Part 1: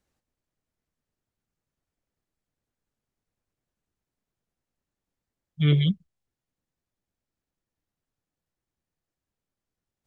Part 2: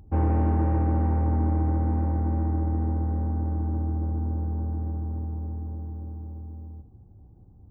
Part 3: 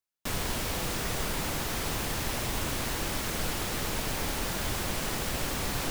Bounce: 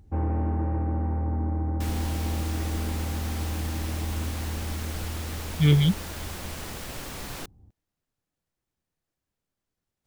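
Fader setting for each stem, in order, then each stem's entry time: +1.5 dB, -4.0 dB, -5.5 dB; 0.00 s, 0.00 s, 1.55 s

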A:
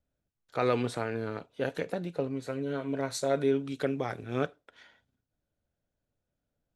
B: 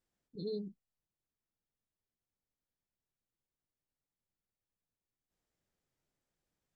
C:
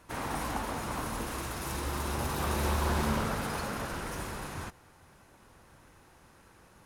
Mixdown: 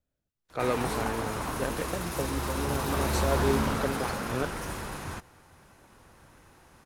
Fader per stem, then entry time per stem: -1.5 dB, -1.0 dB, +2.0 dB; 0.00 s, 0.45 s, 0.50 s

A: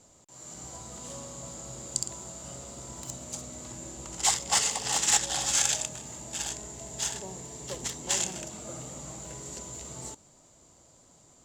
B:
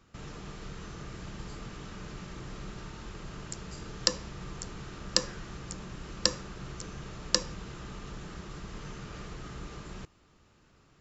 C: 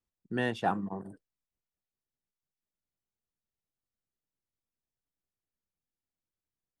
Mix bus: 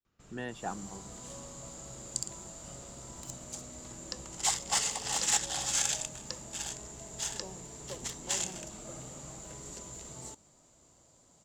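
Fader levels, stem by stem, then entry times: -4.5 dB, -15.0 dB, -8.5 dB; 0.20 s, 0.05 s, 0.00 s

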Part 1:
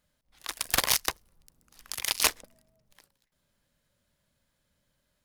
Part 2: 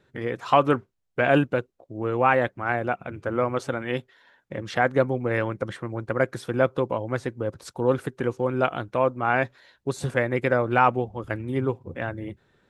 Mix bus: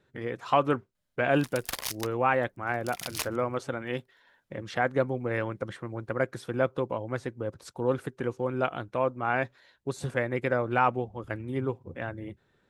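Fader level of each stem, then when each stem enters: -9.5 dB, -5.0 dB; 0.95 s, 0.00 s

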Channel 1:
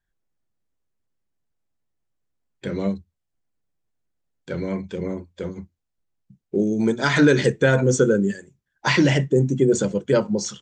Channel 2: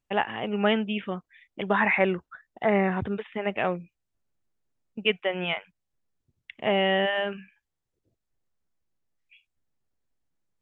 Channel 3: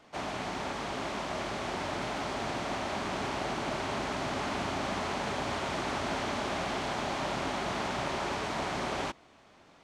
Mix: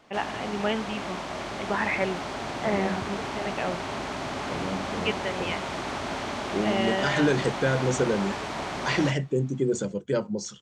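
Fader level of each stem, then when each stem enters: -7.5 dB, -4.5 dB, +1.0 dB; 0.00 s, 0.00 s, 0.00 s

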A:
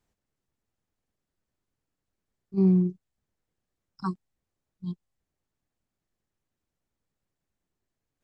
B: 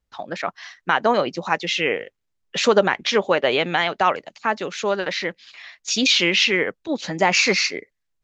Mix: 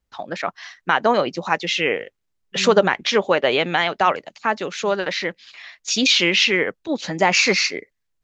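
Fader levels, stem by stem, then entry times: -12.0 dB, +1.0 dB; 0.00 s, 0.00 s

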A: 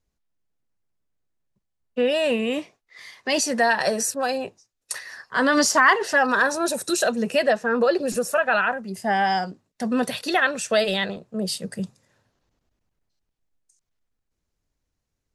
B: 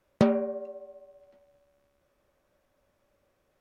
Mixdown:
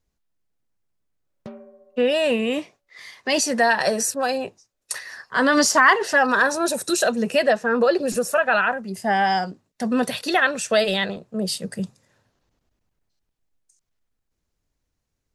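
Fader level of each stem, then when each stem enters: +1.5 dB, -16.5 dB; 0.00 s, 1.25 s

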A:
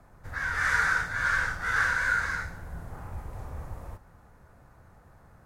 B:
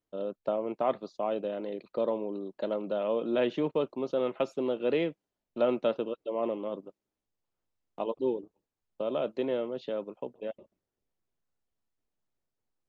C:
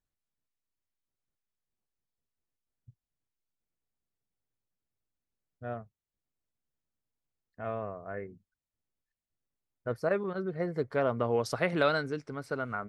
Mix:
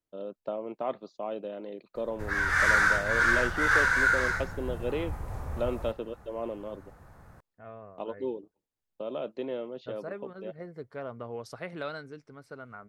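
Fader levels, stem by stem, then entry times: +2.5 dB, -4.0 dB, -10.0 dB; 1.95 s, 0.00 s, 0.00 s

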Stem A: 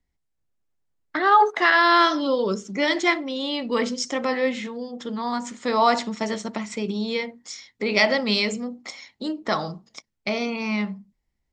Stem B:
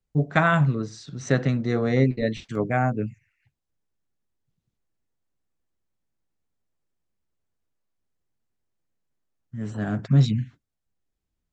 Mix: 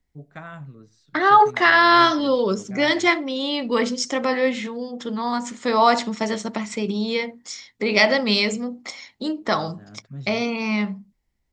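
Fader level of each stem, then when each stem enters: +2.5 dB, -18.5 dB; 0.00 s, 0.00 s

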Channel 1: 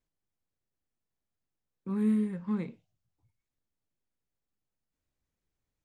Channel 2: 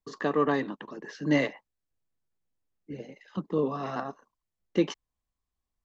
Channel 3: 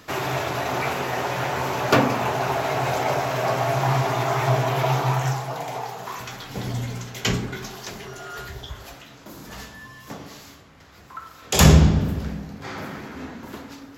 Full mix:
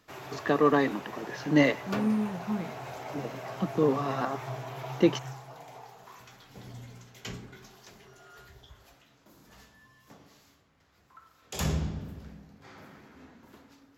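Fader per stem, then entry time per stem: -0.5 dB, +2.5 dB, -17.0 dB; 0.00 s, 0.25 s, 0.00 s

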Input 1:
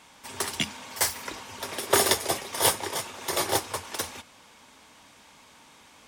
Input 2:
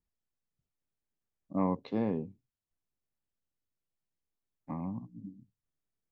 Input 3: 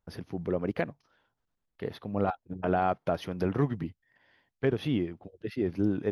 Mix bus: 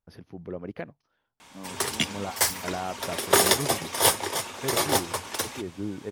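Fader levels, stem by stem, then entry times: +2.0 dB, -13.0 dB, -6.0 dB; 1.40 s, 0.00 s, 0.00 s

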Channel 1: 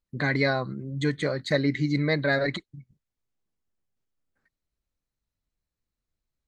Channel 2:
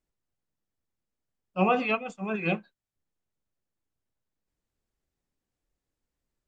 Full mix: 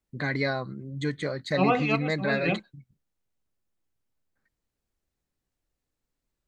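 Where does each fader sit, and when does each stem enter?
-3.5 dB, 0.0 dB; 0.00 s, 0.00 s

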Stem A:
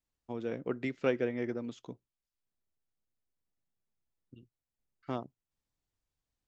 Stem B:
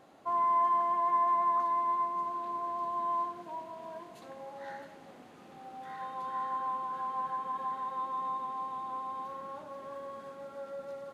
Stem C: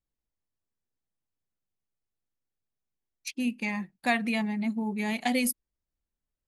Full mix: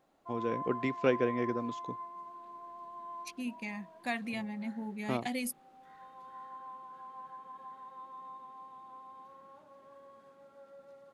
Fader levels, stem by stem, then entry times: +2.0 dB, -12.5 dB, -9.0 dB; 0.00 s, 0.00 s, 0.00 s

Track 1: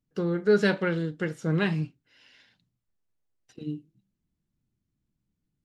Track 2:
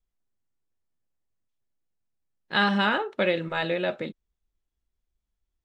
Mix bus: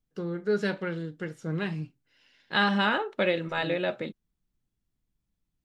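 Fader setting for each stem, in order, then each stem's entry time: -5.5 dB, -1.5 dB; 0.00 s, 0.00 s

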